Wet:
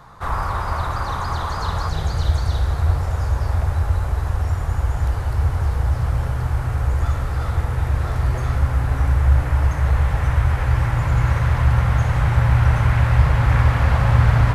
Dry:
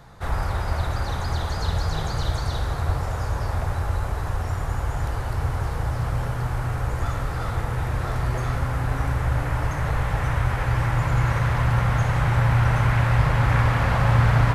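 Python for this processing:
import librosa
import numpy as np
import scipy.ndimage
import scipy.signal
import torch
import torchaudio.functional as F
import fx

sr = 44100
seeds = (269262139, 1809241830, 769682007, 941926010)

y = fx.peak_eq(x, sr, hz=fx.steps((0.0, 1100.0), (1.89, 70.0)), db=11.5, octaves=0.63)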